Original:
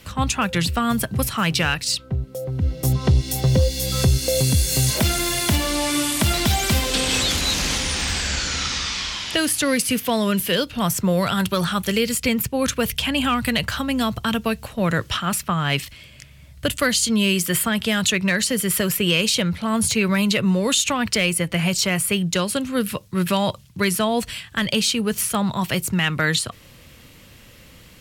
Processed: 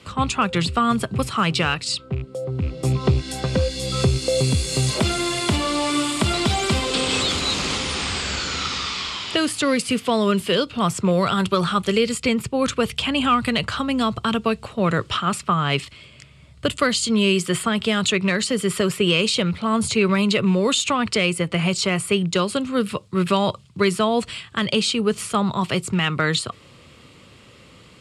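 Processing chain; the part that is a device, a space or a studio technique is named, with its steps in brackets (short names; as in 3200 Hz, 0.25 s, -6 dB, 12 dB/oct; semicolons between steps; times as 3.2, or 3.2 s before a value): 3.18–3.76 thirty-one-band EQ 125 Hz -10 dB, 400 Hz -7 dB, 1600 Hz +12 dB; car door speaker with a rattle (rattling part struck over -19 dBFS, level -29 dBFS; speaker cabinet 83–8400 Hz, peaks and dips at 400 Hz +6 dB, 1200 Hz +6 dB, 1700 Hz -5 dB, 6000 Hz -8 dB)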